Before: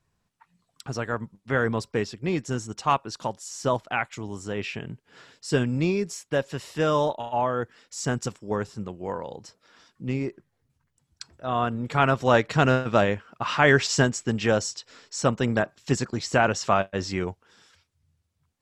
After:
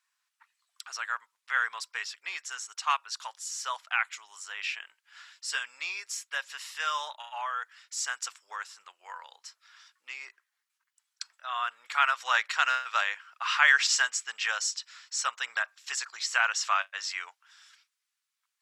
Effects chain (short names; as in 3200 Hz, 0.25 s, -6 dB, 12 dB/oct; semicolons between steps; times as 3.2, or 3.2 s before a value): HPF 1200 Hz 24 dB/oct; gain +1.5 dB